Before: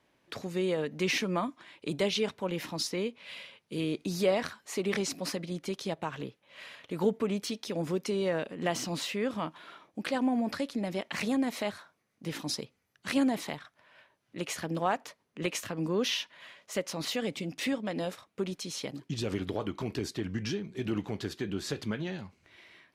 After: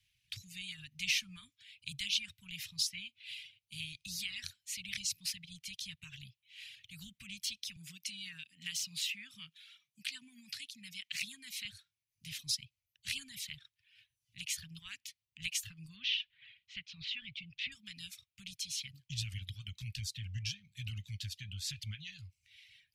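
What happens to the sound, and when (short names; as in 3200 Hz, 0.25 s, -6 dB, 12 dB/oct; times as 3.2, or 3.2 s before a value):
7.76–11.65 HPF 160 Hz 24 dB/oct
15.96–17.72 LPF 3600 Hz 24 dB/oct
whole clip: Chebyshev band-stop 110–2600 Hz, order 3; reverb removal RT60 0.69 s; gain +1.5 dB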